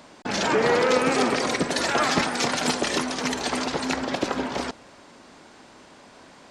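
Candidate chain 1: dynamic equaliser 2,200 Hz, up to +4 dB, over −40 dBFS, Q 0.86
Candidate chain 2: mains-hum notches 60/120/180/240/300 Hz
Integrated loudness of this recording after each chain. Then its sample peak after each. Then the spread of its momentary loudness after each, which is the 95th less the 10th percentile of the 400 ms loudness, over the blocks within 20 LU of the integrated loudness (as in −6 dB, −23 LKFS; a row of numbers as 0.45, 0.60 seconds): −22.5, −24.0 LKFS; −7.5, −9.0 dBFS; 7, 7 LU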